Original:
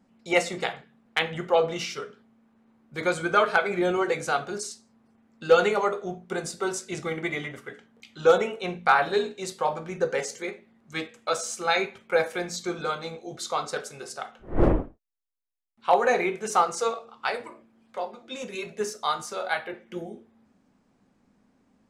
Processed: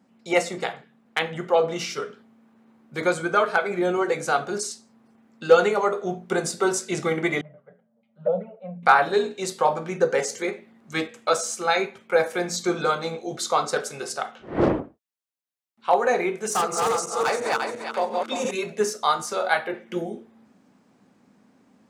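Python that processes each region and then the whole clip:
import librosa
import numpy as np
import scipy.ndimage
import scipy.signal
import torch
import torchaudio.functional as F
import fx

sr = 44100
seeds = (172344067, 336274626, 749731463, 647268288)

y = fx.chain(x, sr, fx.env_flanger(rest_ms=9.4, full_db=-14.0),
    fx.double_bandpass(hz=330.0, octaves=1.7),
    fx.air_absorb(metres=260.0), at=(7.41, 8.83))
y = fx.chain(y, sr, fx.lowpass(hz=7500.0, slope=12),
    fx.peak_eq(hz=4300.0, db=10.5, octaves=2.1), at=(14.36, 14.8))
y = fx.chain(y, sr, fx.reverse_delay_fb(ms=173, feedback_pct=52, wet_db=-1.5),
    fx.high_shelf(hz=6000.0, db=5.0),
    fx.clip_hard(threshold_db=-21.0), at=(16.37, 18.51))
y = scipy.signal.sosfilt(scipy.signal.butter(2, 130.0, 'highpass', fs=sr, output='sos'), y)
y = fx.dynamic_eq(y, sr, hz=2900.0, q=1.0, threshold_db=-41.0, ratio=4.0, max_db=-4)
y = fx.rider(y, sr, range_db=3, speed_s=0.5)
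y = y * 10.0 ** (4.0 / 20.0)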